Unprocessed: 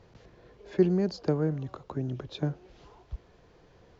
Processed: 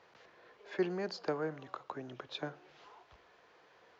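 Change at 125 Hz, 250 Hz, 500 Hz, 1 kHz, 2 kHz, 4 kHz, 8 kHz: -18.0 dB, -12.0 dB, -7.5 dB, 0.0 dB, +3.0 dB, -1.0 dB, n/a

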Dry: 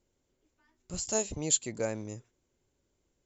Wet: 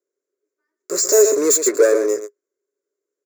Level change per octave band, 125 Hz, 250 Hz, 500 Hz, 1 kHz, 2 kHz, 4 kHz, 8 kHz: under -10 dB, +13.5 dB, +22.0 dB, +11.5 dB, +16.0 dB, +9.5 dB, n/a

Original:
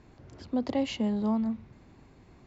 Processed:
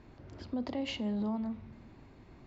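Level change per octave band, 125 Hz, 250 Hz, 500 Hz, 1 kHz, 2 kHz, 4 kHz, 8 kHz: -4.0 dB, -6.0 dB, -7.0 dB, -6.5 dB, -1.5 dB, -2.0 dB, n/a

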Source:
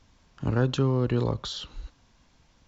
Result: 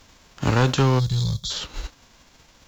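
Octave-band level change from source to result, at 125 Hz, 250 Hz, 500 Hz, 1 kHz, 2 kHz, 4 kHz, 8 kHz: +5.5 dB, +2.5 dB, +2.5 dB, +9.5 dB, +9.5 dB, +8.0 dB, n/a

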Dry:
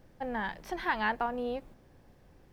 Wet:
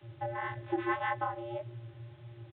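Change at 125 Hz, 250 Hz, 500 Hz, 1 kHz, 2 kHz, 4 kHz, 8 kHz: +10.5 dB, -1.0 dB, -1.5 dB, -1.5 dB, -4.0 dB, -8.0 dB, n/a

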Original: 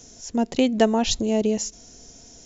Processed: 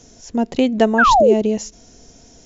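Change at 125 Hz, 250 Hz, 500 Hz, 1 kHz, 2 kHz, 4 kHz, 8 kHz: +3.5 dB, +3.5 dB, +7.0 dB, +13.5 dB, +14.5 dB, +0.5 dB, n/a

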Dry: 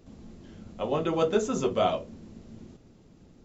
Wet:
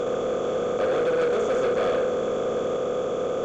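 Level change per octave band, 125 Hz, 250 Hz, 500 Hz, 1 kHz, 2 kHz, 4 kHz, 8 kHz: -1.5 dB, +0.5 dB, +8.0 dB, +2.5 dB, +9.0 dB, +1.5 dB, n/a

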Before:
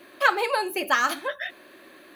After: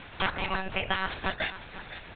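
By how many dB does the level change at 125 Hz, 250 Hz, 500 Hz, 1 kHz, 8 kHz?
n/a, -2.5 dB, -9.0 dB, -8.0 dB, under -40 dB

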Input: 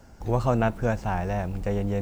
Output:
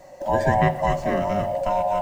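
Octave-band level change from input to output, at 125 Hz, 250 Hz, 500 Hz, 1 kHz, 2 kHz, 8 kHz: -1.0, 0.0, +5.5, +9.0, +5.5, +3.0 dB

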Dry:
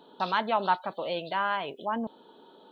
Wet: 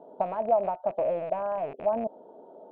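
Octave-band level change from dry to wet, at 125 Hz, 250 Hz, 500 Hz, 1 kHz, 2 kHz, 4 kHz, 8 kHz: -2.0 dB, -3.0 dB, +7.0 dB, -3.0 dB, -17.0 dB, under -25 dB, n/a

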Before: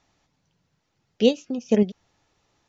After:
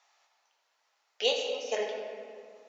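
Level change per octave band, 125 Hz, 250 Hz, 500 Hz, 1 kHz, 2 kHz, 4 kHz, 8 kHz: under -30 dB, -29.5 dB, -7.5 dB, +2.5 dB, +2.5 dB, +2.0 dB, n/a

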